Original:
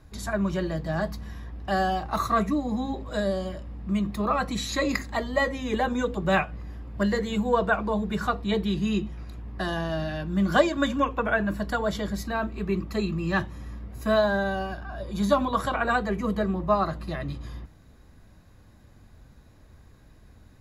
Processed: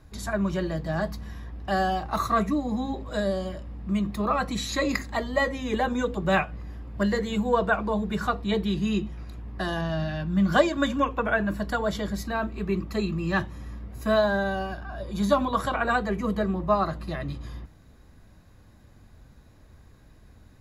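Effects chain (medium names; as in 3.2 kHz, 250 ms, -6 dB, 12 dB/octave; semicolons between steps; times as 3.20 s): 9.81–10.53 s: fifteen-band graphic EQ 160 Hz +4 dB, 400 Hz -6 dB, 10 kHz -8 dB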